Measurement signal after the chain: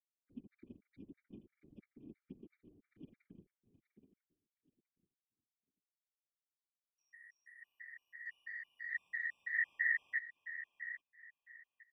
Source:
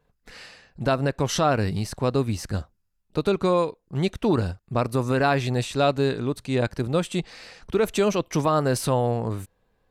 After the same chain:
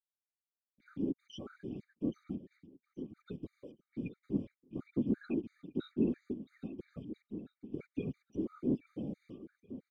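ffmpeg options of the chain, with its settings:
-filter_complex "[0:a]afftfilt=real='re*gte(hypot(re,im),0.1)':imag='im*gte(hypot(re,im),0.1)':win_size=1024:overlap=0.75,aecho=1:1:4.2:0.87,acrusher=bits=6:mix=0:aa=0.5,asplit=3[s0][s1][s2];[s0]bandpass=f=270:t=q:w=8,volume=1[s3];[s1]bandpass=f=2290:t=q:w=8,volume=0.501[s4];[s2]bandpass=f=3010:t=q:w=8,volume=0.355[s5];[s3][s4][s5]amix=inputs=3:normalize=0,afftfilt=real='hypot(re,im)*cos(2*PI*random(0))':imag='hypot(re,im)*sin(2*PI*random(1))':win_size=512:overlap=0.75,asplit=2[s6][s7];[s7]aecho=0:1:823|1646|2469:0.266|0.0612|0.0141[s8];[s6][s8]amix=inputs=2:normalize=0,afftfilt=real='re*gt(sin(2*PI*3*pts/sr)*(1-2*mod(floor(b*sr/1024/1200),2)),0)':imag='im*gt(sin(2*PI*3*pts/sr)*(1-2*mod(floor(b*sr/1024/1200),2)),0)':win_size=1024:overlap=0.75,volume=1.12"

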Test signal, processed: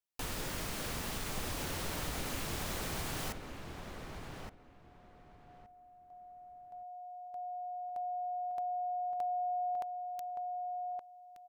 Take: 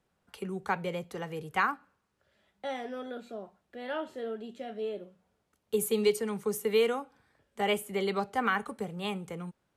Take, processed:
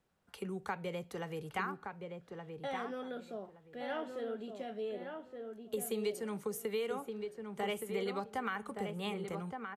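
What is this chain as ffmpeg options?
-filter_complex "[0:a]acompressor=threshold=0.0224:ratio=3,asplit=2[s0][s1];[s1]adelay=1170,lowpass=f=1900:p=1,volume=0.562,asplit=2[s2][s3];[s3]adelay=1170,lowpass=f=1900:p=1,volume=0.22,asplit=2[s4][s5];[s5]adelay=1170,lowpass=f=1900:p=1,volume=0.22[s6];[s0][s2][s4][s6]amix=inputs=4:normalize=0,volume=0.75"

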